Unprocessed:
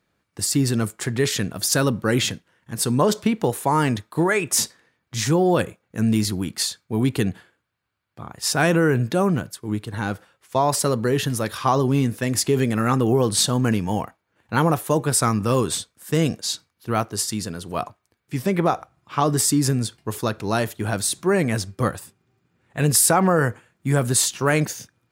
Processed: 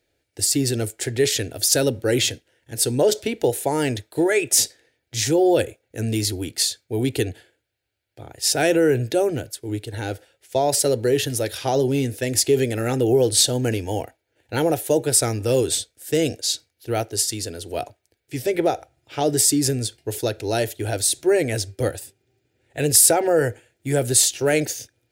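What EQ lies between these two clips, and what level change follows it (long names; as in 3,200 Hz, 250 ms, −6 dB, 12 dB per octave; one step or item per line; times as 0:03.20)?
phaser with its sweep stopped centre 460 Hz, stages 4
+3.5 dB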